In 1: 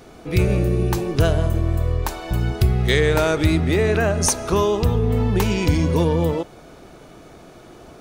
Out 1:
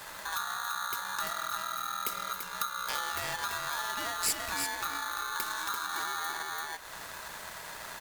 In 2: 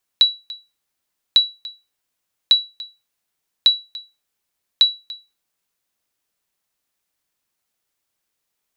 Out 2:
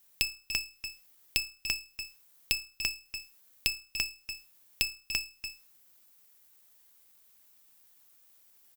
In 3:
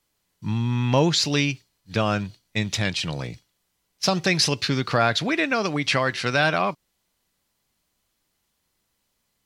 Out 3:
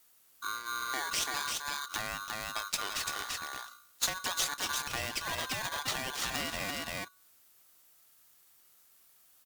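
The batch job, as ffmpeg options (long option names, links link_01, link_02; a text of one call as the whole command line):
ffmpeg -i in.wav -af "aecho=1:1:339:0.531,acompressor=threshold=-35dB:ratio=4,aemphasis=mode=production:type=50fm,bandreject=frequency=57.91:width_type=h:width=4,bandreject=frequency=115.82:width_type=h:width=4,bandreject=frequency=173.73:width_type=h:width=4,bandreject=frequency=231.64:width_type=h:width=4,aeval=exprs='val(0)*sgn(sin(2*PI*1300*n/s))':channel_layout=same,volume=-1dB" out.wav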